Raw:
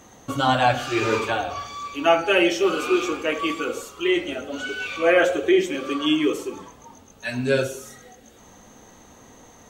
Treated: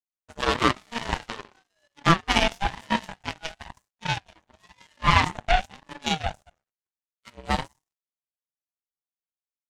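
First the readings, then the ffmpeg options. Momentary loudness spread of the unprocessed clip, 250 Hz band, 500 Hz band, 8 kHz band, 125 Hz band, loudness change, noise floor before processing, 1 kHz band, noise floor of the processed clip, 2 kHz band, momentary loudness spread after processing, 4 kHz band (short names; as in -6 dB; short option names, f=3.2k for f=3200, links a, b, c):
13 LU, -8.0 dB, -12.5 dB, -3.5 dB, +2.5 dB, -3.5 dB, -50 dBFS, -1.0 dB, under -85 dBFS, -4.0 dB, 18 LU, -1.0 dB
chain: -af "afftfilt=real='re*between(b*sr/4096,100,11000)':imag='im*between(b*sr/4096,100,11000)':win_size=4096:overlap=0.75,aeval=exprs='0.631*(cos(1*acos(clip(val(0)/0.631,-1,1)))-cos(1*PI/2))+0.0794*(cos(3*acos(clip(val(0)/0.631,-1,1)))-cos(3*PI/2))+0.0562*(cos(7*acos(clip(val(0)/0.631,-1,1)))-cos(7*PI/2))':c=same,aeval=exprs='val(0)*sin(2*PI*450*n/s+450*0.3/1*sin(2*PI*1*n/s))':c=same,volume=4.5dB"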